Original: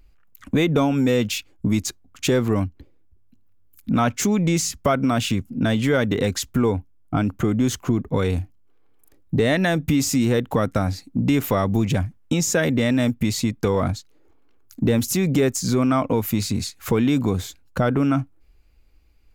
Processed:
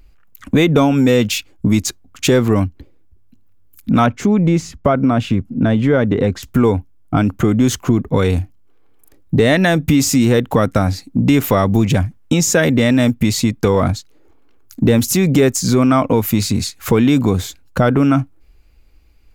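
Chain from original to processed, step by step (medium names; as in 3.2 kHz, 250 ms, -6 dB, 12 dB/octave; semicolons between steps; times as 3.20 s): 4.06–6.43 s: low-pass 1.1 kHz 6 dB/octave; trim +6.5 dB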